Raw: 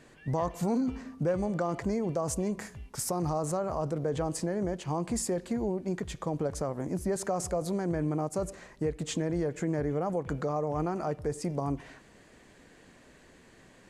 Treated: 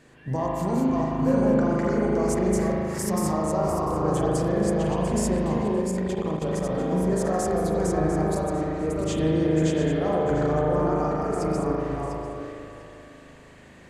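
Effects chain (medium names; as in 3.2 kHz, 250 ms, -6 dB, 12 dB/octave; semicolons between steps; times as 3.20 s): backward echo that repeats 348 ms, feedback 41%, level -1.5 dB; spring tank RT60 2.6 s, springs 38 ms, chirp 55 ms, DRR -3.5 dB; 5.81–6.75 s: level held to a coarse grid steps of 13 dB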